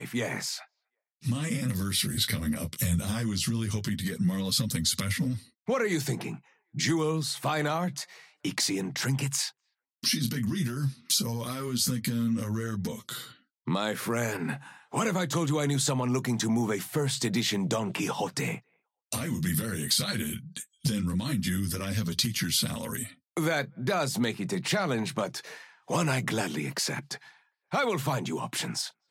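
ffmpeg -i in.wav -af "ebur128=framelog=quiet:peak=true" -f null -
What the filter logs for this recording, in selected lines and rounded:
Integrated loudness:
  I:         -29.4 LUFS
  Threshold: -39.7 LUFS
Loudness range:
  LRA:         2.4 LU
  Threshold: -49.6 LUFS
  LRA low:   -30.9 LUFS
  LRA high:  -28.5 LUFS
True peak:
  Peak:      -13.4 dBFS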